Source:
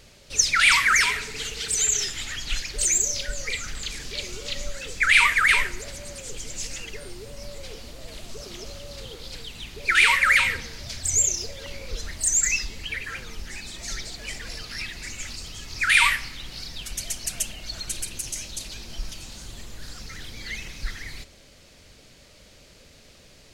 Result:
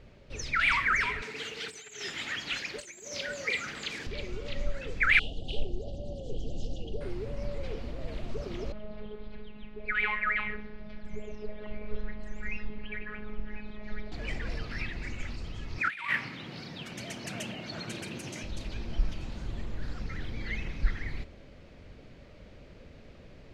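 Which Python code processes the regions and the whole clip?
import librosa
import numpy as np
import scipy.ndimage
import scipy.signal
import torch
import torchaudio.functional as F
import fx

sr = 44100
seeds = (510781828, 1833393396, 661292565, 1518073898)

y = fx.chain(x, sr, fx.tilt_eq(slope=2.0),
    fx.over_compress(threshold_db=-24.0, ratio=-1.0),
    fx.highpass(hz=160.0, slope=12), at=(1.22, 4.07))
y = fx.chain(y, sr, fx.brickwall_bandstop(low_hz=830.0, high_hz=2800.0),
    fx.air_absorb(metres=89.0),
    fx.doppler_dist(depth_ms=0.22), at=(5.19, 7.01))
y = fx.chain(y, sr, fx.air_absorb(metres=350.0),
    fx.robotise(hz=211.0), at=(8.72, 14.12))
y = fx.chain(y, sr, fx.highpass(hz=130.0, slope=24),
    fx.over_compress(threshold_db=-24.0, ratio=-0.5), at=(15.78, 18.43))
y = fx.curve_eq(y, sr, hz=(290.0, 2300.0, 9600.0), db=(0, -8, -29))
y = fx.rider(y, sr, range_db=5, speed_s=2.0)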